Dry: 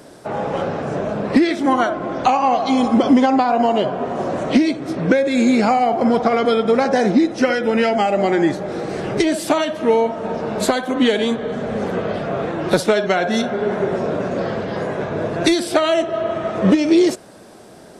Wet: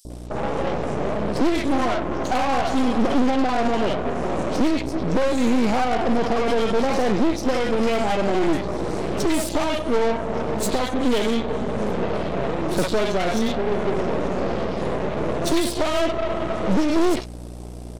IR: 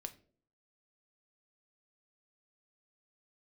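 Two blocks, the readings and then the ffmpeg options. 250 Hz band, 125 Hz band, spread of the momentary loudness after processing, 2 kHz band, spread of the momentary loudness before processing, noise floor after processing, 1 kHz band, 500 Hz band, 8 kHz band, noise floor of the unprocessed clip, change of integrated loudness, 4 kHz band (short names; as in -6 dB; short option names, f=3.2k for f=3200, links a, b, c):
-5.0 dB, -1.5 dB, 5 LU, -5.0 dB, 8 LU, -34 dBFS, -5.0 dB, -4.5 dB, -1.0 dB, -42 dBFS, -4.5 dB, -3.5 dB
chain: -filter_complex "[0:a]highpass=140,equalizer=f=1.6k:w=2.5:g=-11.5,aeval=exprs='val(0)+0.0178*(sin(2*PI*60*n/s)+sin(2*PI*2*60*n/s)/2+sin(2*PI*3*60*n/s)/3+sin(2*PI*4*60*n/s)/4+sin(2*PI*5*60*n/s)/5)':c=same,acrossover=split=810|4200[a][b][c];[a]adelay=50[d];[b]adelay=100[e];[d][e][c]amix=inputs=3:normalize=0,asoftclip=type=tanh:threshold=-17dB,aeval=exprs='0.141*(cos(1*acos(clip(val(0)/0.141,-1,1)))-cos(1*PI/2))+0.0562*(cos(2*acos(clip(val(0)/0.141,-1,1)))-cos(2*PI/2))+0.0158*(cos(6*acos(clip(val(0)/0.141,-1,1)))-cos(6*PI/2))':c=same"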